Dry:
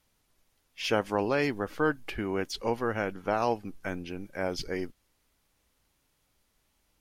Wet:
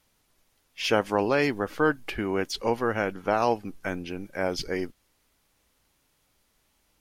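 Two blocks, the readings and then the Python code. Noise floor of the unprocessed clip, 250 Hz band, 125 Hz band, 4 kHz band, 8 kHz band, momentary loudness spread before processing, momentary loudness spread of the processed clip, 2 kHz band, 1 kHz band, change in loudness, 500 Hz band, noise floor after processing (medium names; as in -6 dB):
-74 dBFS, +3.0 dB, +2.0 dB, +4.0 dB, +4.0 dB, 9 LU, 9 LU, +4.0 dB, +4.0 dB, +3.5 dB, +3.5 dB, -70 dBFS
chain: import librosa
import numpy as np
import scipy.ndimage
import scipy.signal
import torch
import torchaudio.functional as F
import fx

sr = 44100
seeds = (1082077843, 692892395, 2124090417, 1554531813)

y = fx.low_shelf(x, sr, hz=140.0, db=-3.5)
y = F.gain(torch.from_numpy(y), 4.0).numpy()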